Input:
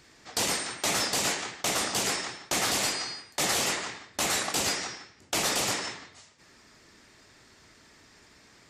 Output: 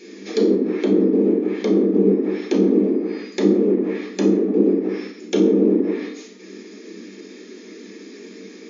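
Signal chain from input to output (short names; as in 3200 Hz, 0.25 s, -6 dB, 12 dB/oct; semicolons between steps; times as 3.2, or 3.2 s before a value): treble ducked by the level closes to 410 Hz, closed at -27 dBFS; reverb RT60 0.50 s, pre-delay 3 ms, DRR 0.5 dB; soft clip -19.5 dBFS, distortion -21 dB; tone controls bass +10 dB, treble +5 dB; FFT band-pass 190–7100 Hz; resonant low shelf 570 Hz +8.5 dB, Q 3; ending taper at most 210 dB/s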